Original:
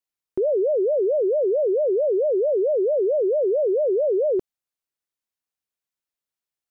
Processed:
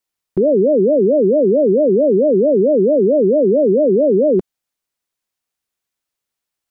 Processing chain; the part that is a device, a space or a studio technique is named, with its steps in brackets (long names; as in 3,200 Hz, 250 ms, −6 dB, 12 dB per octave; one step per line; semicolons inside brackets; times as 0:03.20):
octave pedal (pitch-shifted copies added −12 semitones −7 dB)
level +7 dB